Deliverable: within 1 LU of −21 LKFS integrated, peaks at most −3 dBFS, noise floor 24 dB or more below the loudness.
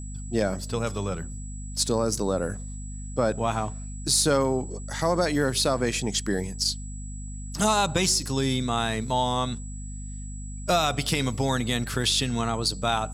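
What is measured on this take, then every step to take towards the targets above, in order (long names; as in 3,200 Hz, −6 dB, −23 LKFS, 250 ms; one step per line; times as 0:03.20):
mains hum 50 Hz; hum harmonics up to 250 Hz; level of the hum −34 dBFS; interfering tone 7,800 Hz; level of the tone −44 dBFS; integrated loudness −26.0 LKFS; sample peak −10.5 dBFS; target loudness −21.0 LKFS
→ hum removal 50 Hz, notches 5
notch filter 7,800 Hz, Q 30
level +5 dB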